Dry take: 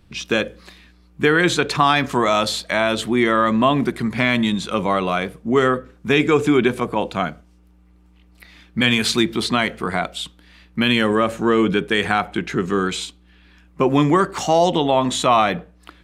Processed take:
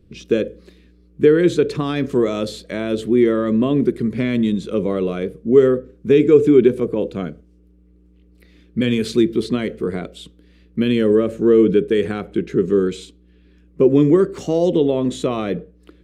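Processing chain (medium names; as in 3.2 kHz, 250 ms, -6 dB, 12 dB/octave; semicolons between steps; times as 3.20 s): resonant low shelf 600 Hz +10 dB, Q 3; trim -10 dB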